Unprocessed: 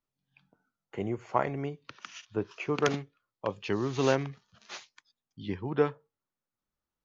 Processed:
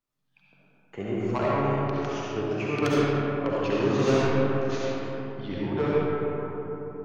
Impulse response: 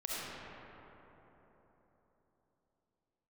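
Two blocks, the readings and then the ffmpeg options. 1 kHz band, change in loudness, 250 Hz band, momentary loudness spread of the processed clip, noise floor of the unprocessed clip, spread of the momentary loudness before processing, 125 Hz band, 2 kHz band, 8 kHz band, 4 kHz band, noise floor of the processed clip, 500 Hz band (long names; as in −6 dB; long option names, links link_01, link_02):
+5.0 dB, +5.0 dB, +8.0 dB, 11 LU, below −85 dBFS, 17 LU, +8.0 dB, +5.0 dB, can't be measured, +4.0 dB, −67 dBFS, +6.5 dB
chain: -filter_complex "[0:a]asoftclip=type=tanh:threshold=-21dB[link_01];[1:a]atrim=start_sample=2205,asetrate=41895,aresample=44100[link_02];[link_01][link_02]afir=irnorm=-1:irlink=0,volume=3.5dB"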